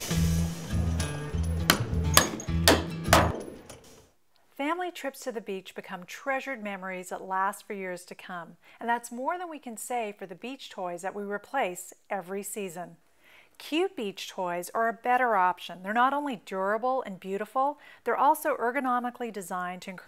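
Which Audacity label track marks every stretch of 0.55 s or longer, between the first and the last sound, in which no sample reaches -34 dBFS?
3.710000	4.600000	silence
12.840000	13.600000	silence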